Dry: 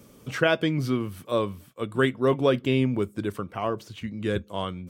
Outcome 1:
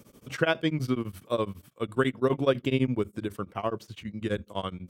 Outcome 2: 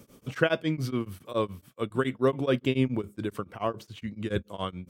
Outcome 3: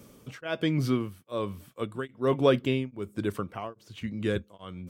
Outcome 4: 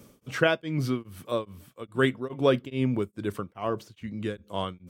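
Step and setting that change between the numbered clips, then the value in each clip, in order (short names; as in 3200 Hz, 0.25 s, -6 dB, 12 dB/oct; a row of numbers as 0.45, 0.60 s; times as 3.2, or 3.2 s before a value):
beating tremolo, nulls at: 12, 7.1, 1.2, 2.4 Hz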